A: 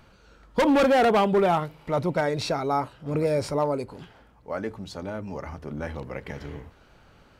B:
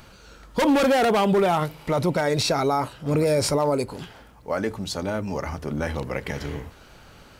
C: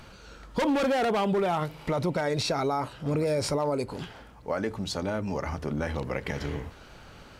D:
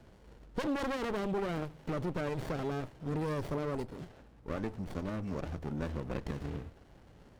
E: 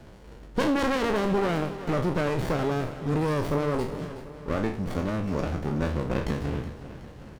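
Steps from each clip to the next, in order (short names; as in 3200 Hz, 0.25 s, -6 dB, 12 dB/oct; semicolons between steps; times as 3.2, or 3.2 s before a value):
high shelf 4300 Hz +10 dB; limiter -19.5 dBFS, peak gain reduction 9.5 dB; gain +6 dB
compressor 2:1, threshold -28 dBFS, peak gain reduction 6.5 dB; high shelf 9900 Hz -10 dB
running maximum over 33 samples; gain -6.5 dB
spectral trails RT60 0.42 s; feedback echo 0.371 s, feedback 54%, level -14 dB; gain +8 dB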